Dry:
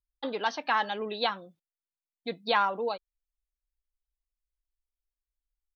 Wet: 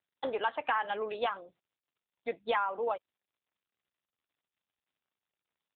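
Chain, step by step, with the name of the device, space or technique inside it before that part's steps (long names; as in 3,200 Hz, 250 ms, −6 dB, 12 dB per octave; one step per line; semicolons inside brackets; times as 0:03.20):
voicemail (band-pass filter 430–2,900 Hz; downward compressor 6 to 1, threshold −29 dBFS, peak gain reduction 8.5 dB; level +3.5 dB; AMR narrowband 7.95 kbit/s 8,000 Hz)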